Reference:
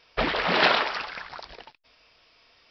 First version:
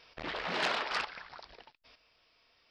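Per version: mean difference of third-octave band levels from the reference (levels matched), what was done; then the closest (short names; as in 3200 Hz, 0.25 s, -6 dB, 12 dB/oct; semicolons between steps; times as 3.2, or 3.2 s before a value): 3.0 dB: chopper 1.1 Hz, depth 65%, duty 15%; core saturation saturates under 2800 Hz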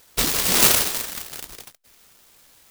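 13.0 dB: high shelf 4700 Hz +11 dB; noise-modulated delay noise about 4400 Hz, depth 0.44 ms; gain +3 dB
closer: first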